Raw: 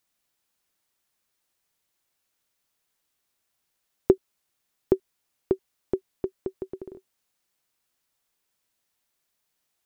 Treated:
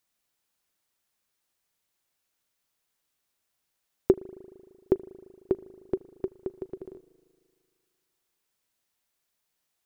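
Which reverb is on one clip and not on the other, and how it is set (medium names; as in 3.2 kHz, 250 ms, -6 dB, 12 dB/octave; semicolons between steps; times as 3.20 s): spring tank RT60 2.1 s, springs 38 ms, chirp 55 ms, DRR 17 dB; trim -2 dB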